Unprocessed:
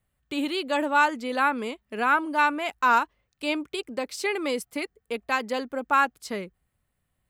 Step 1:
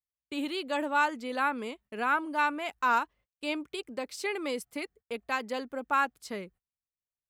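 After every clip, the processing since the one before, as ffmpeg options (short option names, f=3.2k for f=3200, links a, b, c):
-af "agate=range=-26dB:threshold=-50dB:ratio=16:detection=peak,volume=-5.5dB"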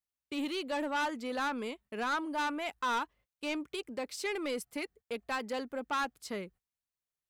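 -af "asoftclip=type=tanh:threshold=-28dB"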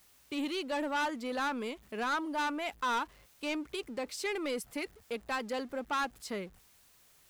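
-af "aeval=exprs='val(0)+0.5*0.002*sgn(val(0))':c=same"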